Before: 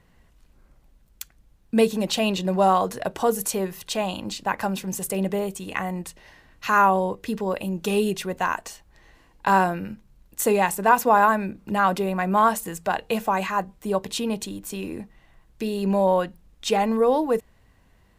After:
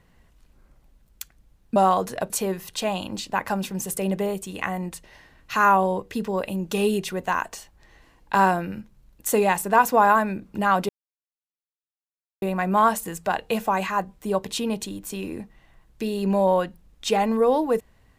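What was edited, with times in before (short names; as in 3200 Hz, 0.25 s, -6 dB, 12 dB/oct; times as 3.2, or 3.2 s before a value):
1.76–2.6 cut
3.14–3.43 cut
12.02 insert silence 1.53 s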